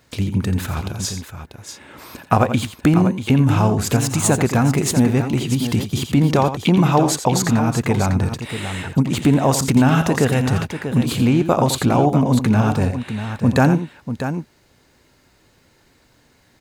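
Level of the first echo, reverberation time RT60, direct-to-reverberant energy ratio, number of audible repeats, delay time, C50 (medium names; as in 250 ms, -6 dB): -10.5 dB, no reverb, no reverb, 2, 86 ms, no reverb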